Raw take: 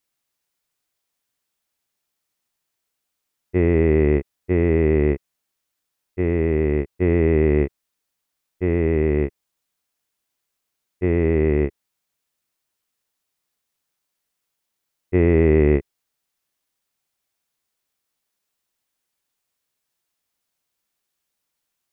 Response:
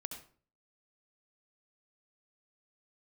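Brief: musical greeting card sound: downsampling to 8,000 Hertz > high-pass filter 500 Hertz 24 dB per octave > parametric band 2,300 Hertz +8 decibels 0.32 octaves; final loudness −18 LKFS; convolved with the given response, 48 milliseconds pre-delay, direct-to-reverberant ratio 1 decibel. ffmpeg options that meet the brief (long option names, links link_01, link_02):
-filter_complex "[0:a]asplit=2[link_01][link_02];[1:a]atrim=start_sample=2205,adelay=48[link_03];[link_02][link_03]afir=irnorm=-1:irlink=0,volume=1dB[link_04];[link_01][link_04]amix=inputs=2:normalize=0,aresample=8000,aresample=44100,highpass=frequency=500:width=0.5412,highpass=frequency=500:width=1.3066,equalizer=frequency=2300:width_type=o:width=0.32:gain=8,volume=8.5dB"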